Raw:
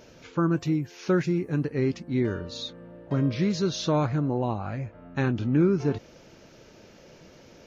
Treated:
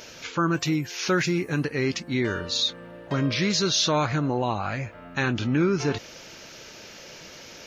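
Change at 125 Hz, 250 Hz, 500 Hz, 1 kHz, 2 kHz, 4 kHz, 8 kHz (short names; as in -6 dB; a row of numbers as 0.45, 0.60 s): -1.0 dB, -0.5 dB, +0.5 dB, +5.0 dB, +9.0 dB, +12.0 dB, n/a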